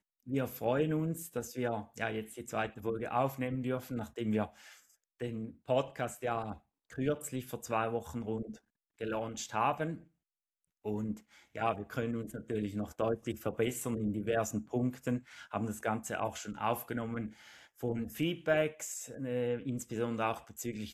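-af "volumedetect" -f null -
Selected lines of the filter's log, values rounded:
mean_volume: -36.1 dB
max_volume: -16.7 dB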